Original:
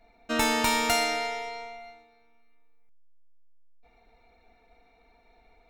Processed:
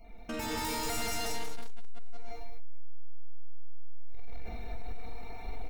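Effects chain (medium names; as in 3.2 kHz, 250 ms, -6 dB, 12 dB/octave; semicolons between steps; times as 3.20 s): random holes in the spectrogram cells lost 26%; feedback delay 182 ms, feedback 43%, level -5 dB; compression 12:1, threshold -40 dBFS, peak gain reduction 19 dB; hard clipper -36.5 dBFS, distortion -21 dB; on a send at -3 dB: reverberation RT60 0.75 s, pre-delay 45 ms; on the sum: level rider gain up to 12 dB; treble shelf 7.3 kHz +8 dB; saturation -33 dBFS, distortion -7 dB; bass shelf 260 Hz +11.5 dB; peak limiter -25 dBFS, peak gain reduction 3.5 dB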